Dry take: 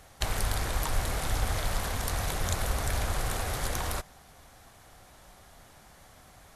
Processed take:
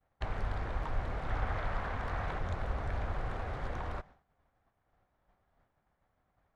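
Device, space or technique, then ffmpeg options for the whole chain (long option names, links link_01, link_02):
hearing-loss simulation: -filter_complex "[0:a]lowpass=1800,agate=range=-33dB:threshold=-44dB:ratio=3:detection=peak,asettb=1/sr,asplit=3[link_01][link_02][link_03];[link_01]atrim=end=1.284[link_04];[link_02]atrim=start=1.28:end=2.39,asetpts=PTS-STARTPTS,afade=type=in:duration=0.004:curve=qsin,afade=type=out:start_time=1.106:duration=0.004:curve=qsin,equalizer=frequency=1500:width=0.62:gain=5[link_05];[link_03]atrim=start=2.386[link_06];[link_04][link_05]acrossfade=duration=0.004:curve1=hsin:curve2=qsin[link_07];[link_07][link_06]acrossfade=duration=0.004:curve1=qsin:curve2=hsin,volume=-5dB"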